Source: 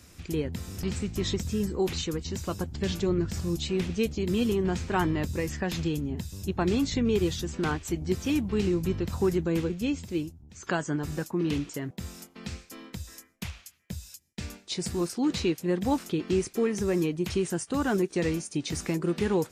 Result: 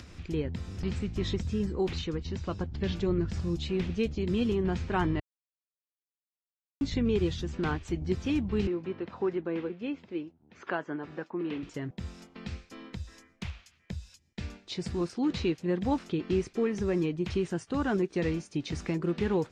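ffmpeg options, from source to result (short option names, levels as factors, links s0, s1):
-filter_complex "[0:a]asettb=1/sr,asplit=3[s0][s1][s2];[s0]atrim=end=1.994[s3];[s1]atrim=start=1.99:end=2.97,asetpts=PTS-STARTPTS,afade=t=in:d=0.004:c=qsin,afade=t=out:st=0.976:d=0.004:c=qsin,lowpass=6000[s4];[s2]atrim=start=2.966[s5];[s3][s4]acrossfade=d=0.004:c1=hsin:c2=qsin[s6];[s6][s5]acrossfade=d=0.004:c1=qsin:c2=hsin,asettb=1/sr,asplit=3[s7][s8][s9];[s7]atrim=end=8.674[s10];[s8]atrim=start=8.67:end=11.63,asetpts=PTS-STARTPTS,afade=t=in:d=0.004:c=qsin,afade=t=out:st=2.956:d=0.004:c=qsin,highpass=310,lowpass=2600[s11];[s9]atrim=start=11.626[s12];[s10][s11]acrossfade=d=0.004:c1=hsin:c2=qsin[s13];[s13][s12]acrossfade=d=0.004:c1=qsin:c2=hsin,asplit=3[s14][s15][s16];[s14]atrim=end=5.2,asetpts=PTS-STARTPTS,afade=t=out:st=5.196:d=0.004:c=hsin[s17];[s15]atrim=start=5.2:end=6.81,asetpts=PTS-STARTPTS,volume=0[s18];[s16]atrim=start=6.81,asetpts=PTS-STARTPTS,afade=t=in:d=0.004:c=hsin[s19];[s17][s18][s19]concat=n=3:v=0:a=1,lowpass=4200,lowshelf=f=77:g=6,acompressor=mode=upward:threshold=0.0126:ratio=2.5,volume=0.75"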